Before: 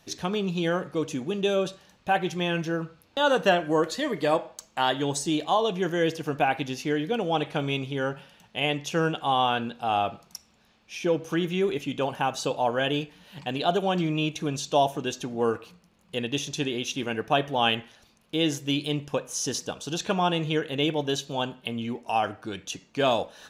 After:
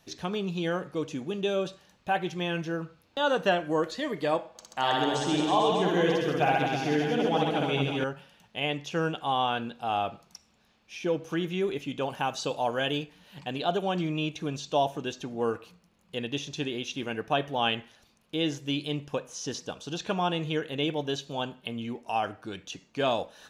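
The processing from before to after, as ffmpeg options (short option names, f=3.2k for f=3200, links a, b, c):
-filter_complex "[0:a]asettb=1/sr,asplit=3[a][b][c];[a]atrim=end=4.494[d];[b]atrim=start=4.49:end=8.04,asetpts=PTS-STARTPTS,afade=t=in:d=0.004:c=qsin,afade=t=out:st=3.546:d=0.004:c=qsin,aecho=1:1:60|132|218.4|322.1|446.5|595.8:0.794|0.631|0.501|0.398|0.316|0.251,atrim=end_sample=156555[e];[c]atrim=start=8.036[f];[d][e]acrossfade=d=0.004:c1=hsin:c2=qsin[g];[g][f]acrossfade=d=0.004:c1=qsin:c2=hsin,asettb=1/sr,asplit=3[h][i][j];[h]atrim=end=12.104[k];[i]atrim=start=12.1:end=12.98,asetpts=PTS-STARTPTS,afade=t=in:d=0.004:c=qsin,afade=t=out:st=0.876:d=0.004:c=qsin,highshelf=f=5.2k:g=10[l];[j]atrim=start=12.976[m];[k][l]acrossfade=d=0.004:c1=hsin:c2=qsin[n];[n][m]acrossfade=d=0.004:c1=qsin:c2=hsin,acrossover=split=6100[o][p];[p]acompressor=threshold=-53dB:ratio=4:attack=1:release=60[q];[o][q]amix=inputs=2:normalize=0,volume=-3.5dB"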